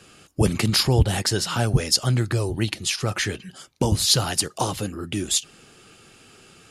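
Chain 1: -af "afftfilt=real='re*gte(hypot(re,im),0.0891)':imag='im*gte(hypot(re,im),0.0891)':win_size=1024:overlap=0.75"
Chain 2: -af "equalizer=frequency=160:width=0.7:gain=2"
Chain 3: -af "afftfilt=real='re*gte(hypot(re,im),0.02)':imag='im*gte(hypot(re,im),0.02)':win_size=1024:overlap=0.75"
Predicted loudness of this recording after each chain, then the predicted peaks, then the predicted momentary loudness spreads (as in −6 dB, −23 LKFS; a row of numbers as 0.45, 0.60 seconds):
−23.0, −21.5, −22.5 LKFS; −4.0, −4.0, −4.0 dBFS; 10, 10, 9 LU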